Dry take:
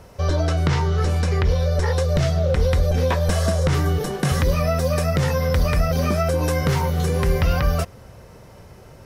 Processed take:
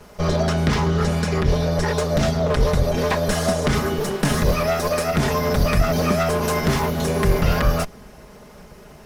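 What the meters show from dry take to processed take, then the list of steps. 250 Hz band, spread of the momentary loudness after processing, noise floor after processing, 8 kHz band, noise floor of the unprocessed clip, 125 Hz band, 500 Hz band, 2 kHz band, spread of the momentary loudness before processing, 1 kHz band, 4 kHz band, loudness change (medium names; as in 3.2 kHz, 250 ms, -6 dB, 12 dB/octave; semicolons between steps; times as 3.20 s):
+3.5 dB, 2 LU, -44 dBFS, +3.0 dB, -45 dBFS, -2.5 dB, +2.0 dB, +3.0 dB, 2 LU, +3.0 dB, +3.0 dB, 0.0 dB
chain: comb filter that takes the minimum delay 4.8 ms; trim +3 dB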